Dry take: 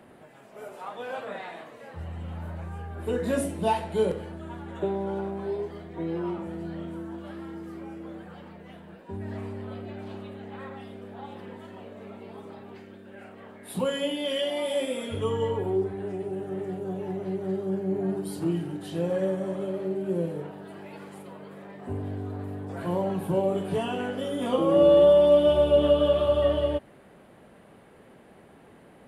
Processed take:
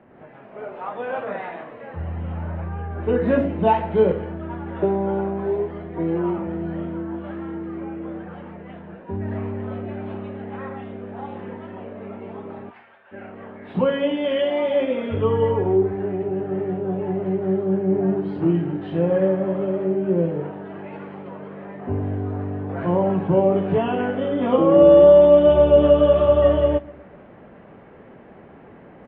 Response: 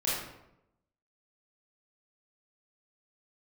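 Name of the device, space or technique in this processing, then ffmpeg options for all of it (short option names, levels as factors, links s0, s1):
action camera in a waterproof case: -filter_complex "[0:a]asplit=3[s0][s1][s2];[s0]afade=t=out:st=12.69:d=0.02[s3];[s1]highpass=f=770:w=0.5412,highpass=f=770:w=1.3066,afade=t=in:st=12.69:d=0.02,afade=t=out:st=13.11:d=0.02[s4];[s2]afade=t=in:st=13.11:d=0.02[s5];[s3][s4][s5]amix=inputs=3:normalize=0,lowpass=f=2700:w=0.5412,lowpass=f=2700:w=1.3066,equalizer=f=6400:w=0.33:g=-4.5,asplit=2[s6][s7];[s7]adelay=124,lowpass=f=2000:p=1,volume=0.0794,asplit=2[s8][s9];[s9]adelay=124,lowpass=f=2000:p=1,volume=0.52,asplit=2[s10][s11];[s11]adelay=124,lowpass=f=2000:p=1,volume=0.52,asplit=2[s12][s13];[s13]adelay=124,lowpass=f=2000:p=1,volume=0.52[s14];[s6][s8][s10][s12][s14]amix=inputs=5:normalize=0,dynaudnorm=f=110:g=3:m=2.51" -ar 22050 -c:a aac -b:a 48k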